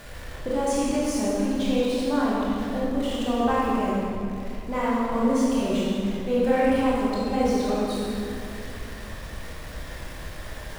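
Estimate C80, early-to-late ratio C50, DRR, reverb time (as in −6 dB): −1.5 dB, −3.5 dB, −7.5 dB, 2.5 s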